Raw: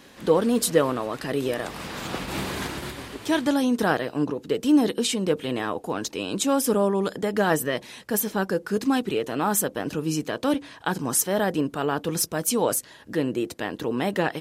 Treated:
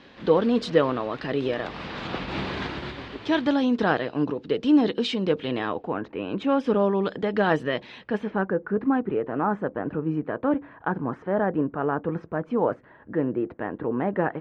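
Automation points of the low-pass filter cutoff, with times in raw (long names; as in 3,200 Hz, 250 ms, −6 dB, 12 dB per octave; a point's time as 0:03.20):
low-pass filter 24 dB per octave
0:05.74 4,200 Hz
0:06.02 1,900 Hz
0:06.84 3,800 Hz
0:07.95 3,800 Hz
0:08.57 1,700 Hz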